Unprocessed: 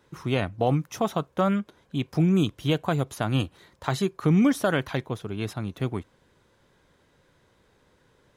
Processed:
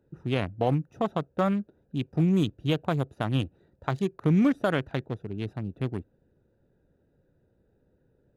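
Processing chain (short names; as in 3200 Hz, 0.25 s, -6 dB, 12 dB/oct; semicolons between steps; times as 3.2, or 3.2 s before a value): Wiener smoothing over 41 samples; gain -1.5 dB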